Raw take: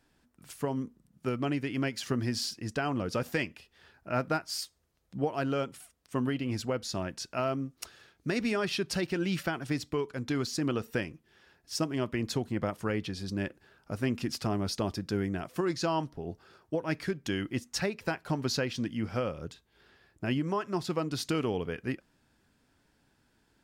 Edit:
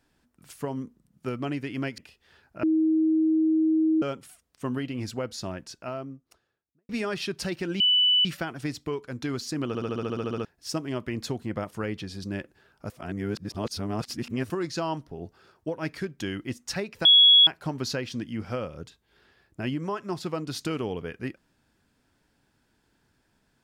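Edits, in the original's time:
0:01.98–0:03.49: remove
0:04.14–0:05.53: beep over 317 Hz −19 dBFS
0:06.83–0:08.40: fade out and dull
0:09.31: insert tone 2,980 Hz −17.5 dBFS 0.45 s
0:10.74: stutter in place 0.07 s, 11 plays
0:13.96–0:15.56: reverse
0:18.11: insert tone 3,350 Hz −12 dBFS 0.42 s

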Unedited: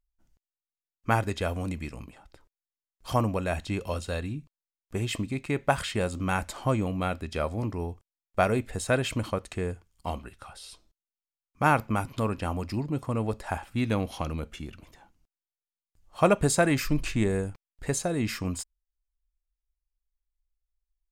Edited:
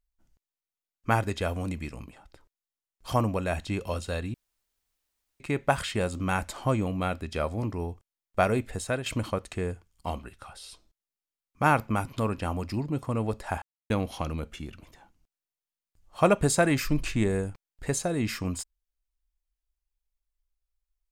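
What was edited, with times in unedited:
0:04.34–0:05.40: fill with room tone
0:08.71–0:09.06: fade out, to −9 dB
0:13.62–0:13.90: silence

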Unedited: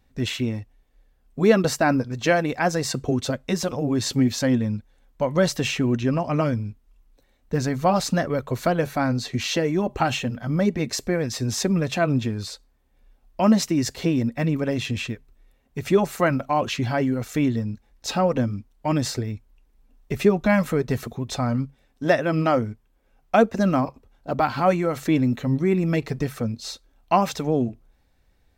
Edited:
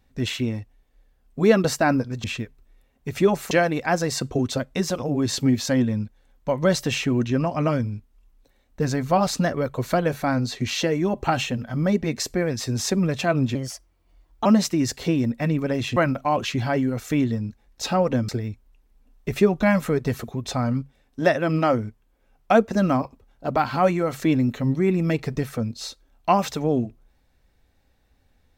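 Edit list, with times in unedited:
0:12.28–0:13.43: play speed 127%
0:14.94–0:16.21: move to 0:02.24
0:18.53–0:19.12: remove

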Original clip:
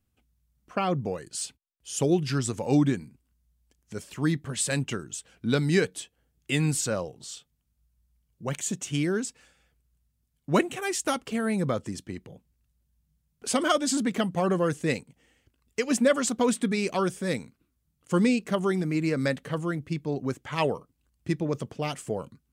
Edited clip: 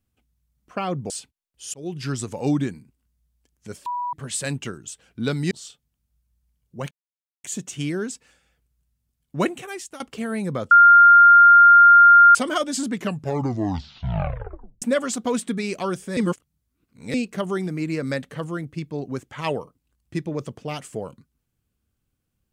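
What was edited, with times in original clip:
0:01.10–0:01.36: remove
0:02.00–0:02.35: fade in
0:04.12–0:04.39: beep over 977 Hz −24 dBFS
0:05.77–0:07.18: remove
0:08.58: splice in silence 0.53 s
0:10.67–0:11.14: fade out linear, to −17.5 dB
0:11.85–0:13.49: beep over 1,400 Hz −7 dBFS
0:14.04: tape stop 1.92 s
0:17.31–0:18.28: reverse

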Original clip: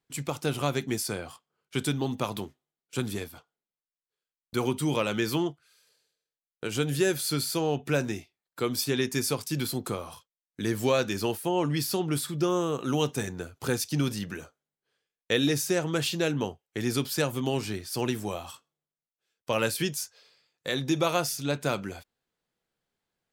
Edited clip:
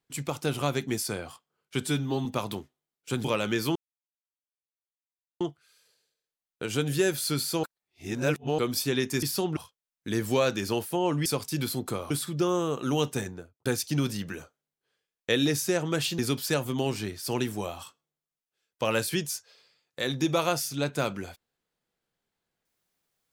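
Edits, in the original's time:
0:01.82–0:02.11: time-stretch 1.5×
0:03.10–0:04.91: remove
0:05.42: splice in silence 1.65 s
0:07.65–0:08.60: reverse
0:09.24–0:10.09: swap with 0:11.78–0:12.12
0:13.17–0:13.67: fade out and dull
0:16.20–0:16.86: remove

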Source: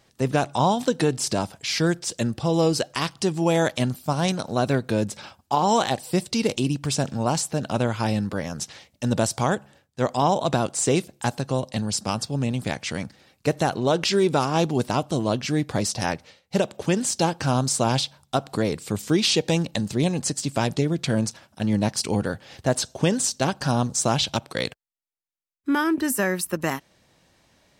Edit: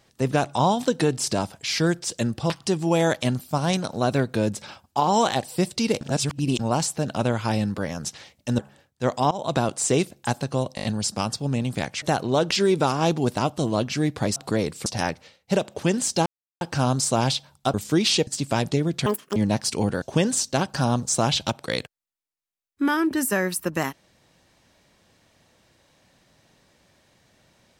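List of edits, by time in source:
0:02.50–0:03.05: remove
0:06.56–0:07.14: reverse
0:09.14–0:09.56: remove
0:10.28–0:10.61: fade in equal-power, from −20.5 dB
0:11.73: stutter 0.02 s, 5 plays
0:12.91–0:13.55: remove
0:17.29: splice in silence 0.35 s
0:18.42–0:18.92: move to 0:15.89
0:19.45–0:20.32: remove
0:21.11–0:21.68: play speed 190%
0:22.34–0:22.89: remove

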